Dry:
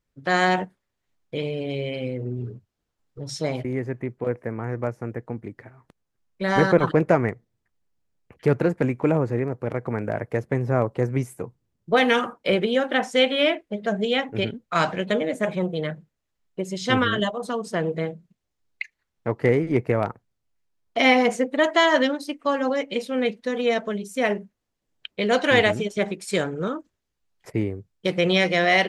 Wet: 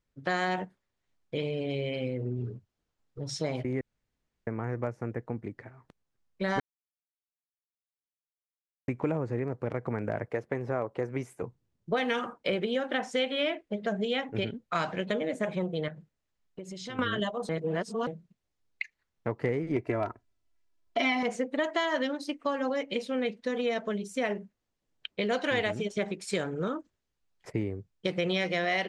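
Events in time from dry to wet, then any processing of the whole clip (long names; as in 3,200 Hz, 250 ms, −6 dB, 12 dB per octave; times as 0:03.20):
0:03.81–0:04.47: fill with room tone
0:06.60–0:08.88: silence
0:10.28–0:11.42: bass and treble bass −9 dB, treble −4 dB
0:15.88–0:16.99: downward compressor, threshold −35 dBFS
0:17.49–0:18.07: reverse
0:19.76–0:21.23: comb filter 3 ms, depth 79%
whole clip: low-pass filter 8,300 Hz 12 dB per octave; downward compressor 3 to 1, threshold −25 dBFS; level −2.5 dB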